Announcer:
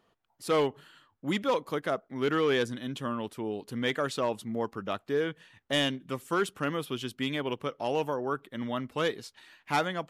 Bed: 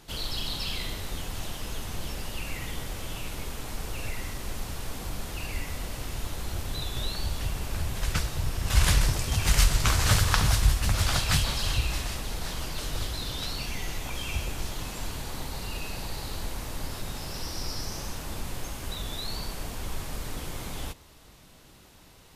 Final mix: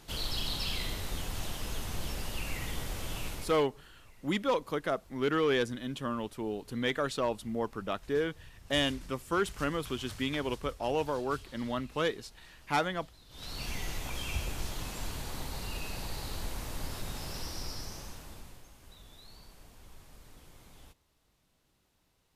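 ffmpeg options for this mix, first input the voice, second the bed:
-filter_complex "[0:a]adelay=3000,volume=0.841[s0];[1:a]volume=8.91,afade=t=out:st=3.27:d=0.37:silence=0.0749894,afade=t=in:st=13.29:d=0.4:silence=0.0891251,afade=t=out:st=17.29:d=1.35:silence=0.158489[s1];[s0][s1]amix=inputs=2:normalize=0"

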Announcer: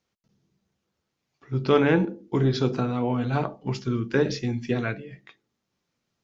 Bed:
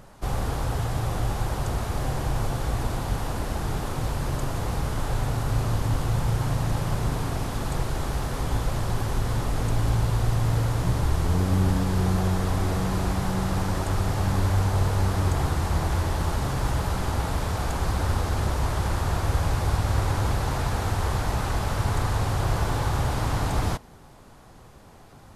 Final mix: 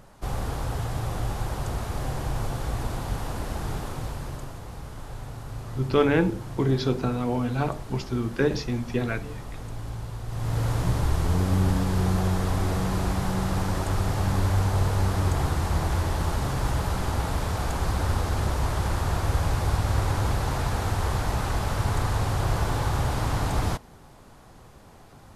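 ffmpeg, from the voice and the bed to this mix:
-filter_complex "[0:a]adelay=4250,volume=0.891[s0];[1:a]volume=2.66,afade=t=out:st=3.71:d=0.9:silence=0.354813,afade=t=in:st=10.27:d=0.43:silence=0.281838[s1];[s0][s1]amix=inputs=2:normalize=0"

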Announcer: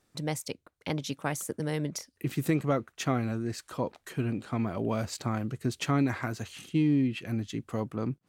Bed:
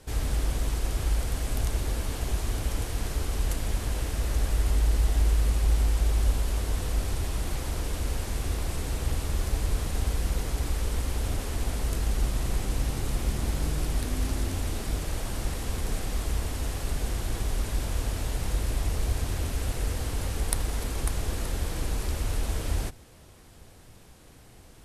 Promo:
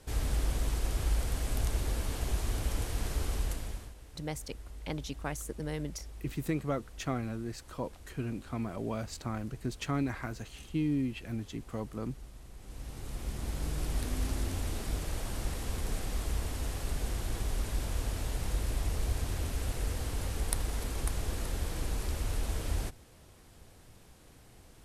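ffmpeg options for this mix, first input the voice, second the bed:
-filter_complex "[0:a]adelay=4000,volume=0.531[s0];[1:a]volume=5.01,afade=t=out:st=3.3:d=0.64:silence=0.11885,afade=t=in:st=12.57:d=1.45:silence=0.133352[s1];[s0][s1]amix=inputs=2:normalize=0"

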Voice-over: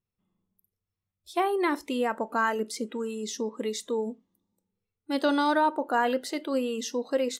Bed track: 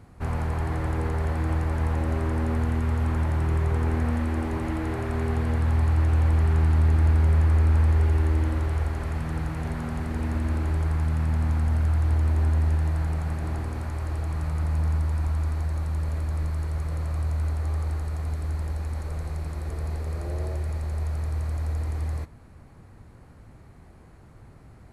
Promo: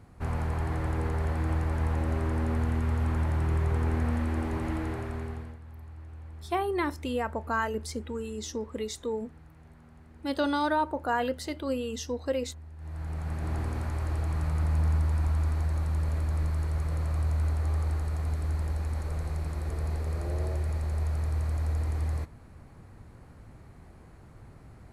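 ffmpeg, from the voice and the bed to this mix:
-filter_complex "[0:a]adelay=5150,volume=0.708[s0];[1:a]volume=9.44,afade=t=out:st=4.76:d=0.82:silence=0.0944061,afade=t=in:st=12.76:d=0.88:silence=0.0749894[s1];[s0][s1]amix=inputs=2:normalize=0"

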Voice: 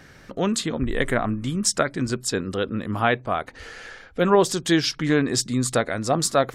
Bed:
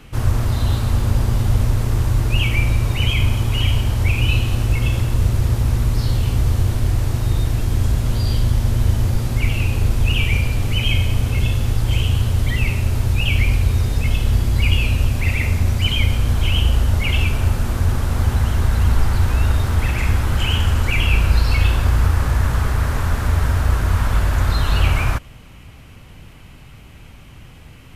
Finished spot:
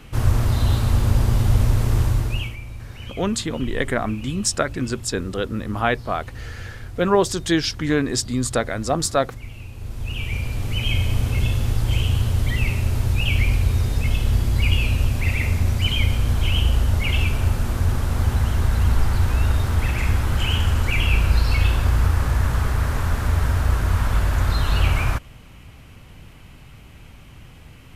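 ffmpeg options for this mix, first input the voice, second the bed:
-filter_complex "[0:a]adelay=2800,volume=1[s0];[1:a]volume=5.62,afade=t=out:st=2.01:d=0.56:silence=0.133352,afade=t=in:st=9.75:d=1.41:silence=0.16788[s1];[s0][s1]amix=inputs=2:normalize=0"

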